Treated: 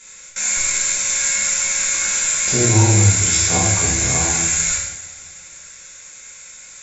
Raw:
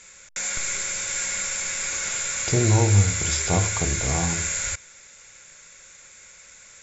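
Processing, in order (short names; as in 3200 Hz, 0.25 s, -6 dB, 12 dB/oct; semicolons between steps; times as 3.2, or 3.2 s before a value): high shelf 5400 Hz +9 dB; two-slope reverb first 0.79 s, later 2.7 s, from -18 dB, DRR -7 dB; gain -3.5 dB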